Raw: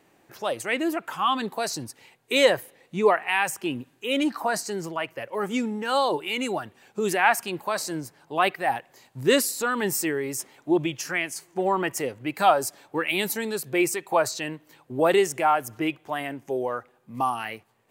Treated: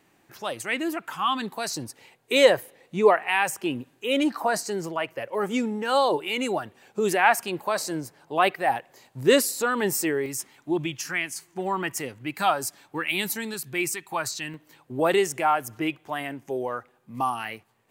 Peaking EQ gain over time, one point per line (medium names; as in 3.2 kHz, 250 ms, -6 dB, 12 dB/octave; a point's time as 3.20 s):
peaking EQ 530 Hz 1.2 oct
-5.5 dB
from 1.77 s +2.5 dB
from 10.26 s -8 dB
from 13.54 s -14 dB
from 14.54 s -2.5 dB